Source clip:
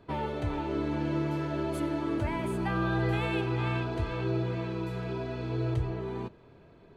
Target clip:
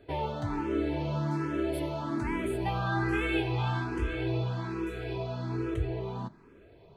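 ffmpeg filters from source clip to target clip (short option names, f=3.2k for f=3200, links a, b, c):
-filter_complex "[0:a]asettb=1/sr,asplit=3[a][b][c];[a]atrim=end=2.664[d];[b]atrim=start=2.66:end=5.16,asetpts=PTS-STARTPTS,afade=t=in:d=0.004:c=qsin,afade=t=out:st=2.496:d=0.004:c=qsin,asplit=2[e][f];[f]adelay=19,volume=-5dB[g];[e][g]amix=inputs=2:normalize=0,atrim=end_sample=110250[h];[c]atrim=start=5.156[i];[d][h]acrossfade=d=0.004:c1=hsin:c2=qsin[j];[j][i]acrossfade=d=0.004:c1=qsin:c2=hsin,asplit=2[k][l];[l]afreqshift=1.2[m];[k][m]amix=inputs=2:normalize=1,volume=3dB"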